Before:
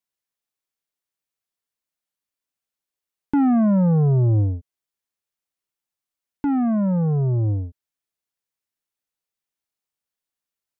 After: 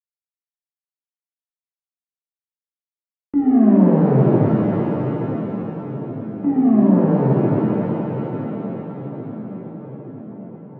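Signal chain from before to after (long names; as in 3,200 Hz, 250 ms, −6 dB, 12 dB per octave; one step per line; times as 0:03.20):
Chebyshev band-pass filter 240–1,400 Hz, order 2
noise gate −31 dBFS, range −37 dB
in parallel at −3 dB: brickwall limiter −20.5 dBFS, peak gain reduction 9 dB
on the sum: soft clipping −16 dBFS, distortion −14 dB
on a send: delay with a low-pass on its return 874 ms, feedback 64%, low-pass 620 Hz, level −11 dB
on the sum: reverb with rising layers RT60 3.5 s, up +7 semitones, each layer −8 dB, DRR −7.5 dB
level −1.5 dB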